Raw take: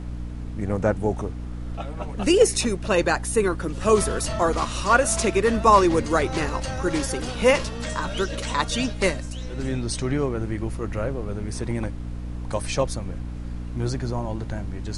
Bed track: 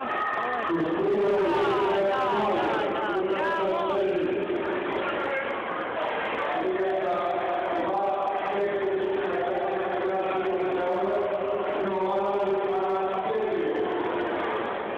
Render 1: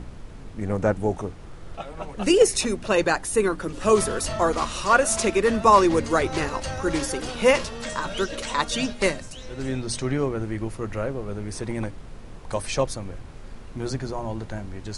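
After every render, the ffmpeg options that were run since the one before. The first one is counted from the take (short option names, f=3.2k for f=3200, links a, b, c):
-af "bandreject=f=60:t=h:w=6,bandreject=f=120:t=h:w=6,bandreject=f=180:t=h:w=6,bandreject=f=240:t=h:w=6,bandreject=f=300:t=h:w=6"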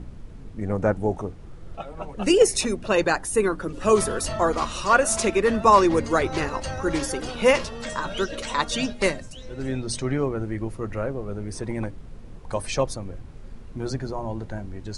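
-af "afftdn=nr=7:nf=-41"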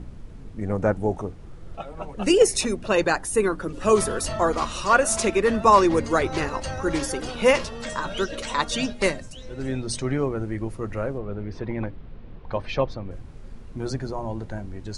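-filter_complex "[0:a]asettb=1/sr,asplit=3[a][b][c];[a]atrim=end=11.184[d];[b]atrim=start=11.18:end=13.11,asetpts=PTS-STARTPTS,afade=t=in:d=0.004:c=qsin,afade=t=out:st=1.926:d=0.004:c=qsin,lowpass=f=3.9k:w=0.5412,lowpass=f=3.9k:w=1.3066[e];[c]atrim=start=13.106[f];[d][e]acrossfade=d=0.004:c1=hsin:c2=qsin[g];[g][f]acrossfade=d=0.004:c1=qsin:c2=hsin"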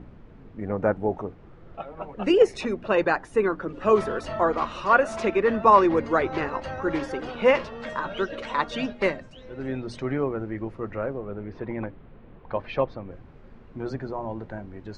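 -af "lowpass=2.4k,lowshelf=f=120:g=-11"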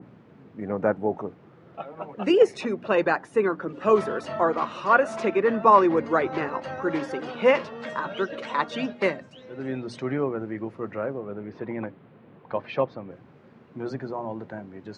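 -af "highpass=f=120:w=0.5412,highpass=f=120:w=1.3066,adynamicequalizer=threshold=0.0141:dfrequency=2400:dqfactor=0.7:tfrequency=2400:tqfactor=0.7:attack=5:release=100:ratio=0.375:range=2:mode=cutabove:tftype=highshelf"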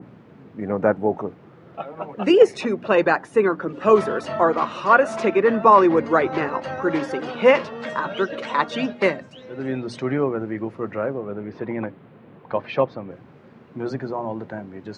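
-af "volume=4.5dB,alimiter=limit=-2dB:level=0:latency=1"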